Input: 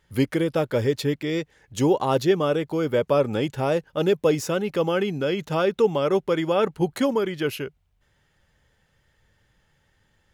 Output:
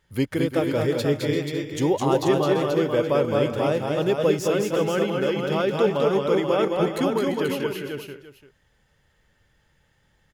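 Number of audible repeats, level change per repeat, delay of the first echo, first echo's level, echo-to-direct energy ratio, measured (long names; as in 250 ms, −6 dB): 6, repeats not evenly spaced, 212 ms, −4.0 dB, −0.5 dB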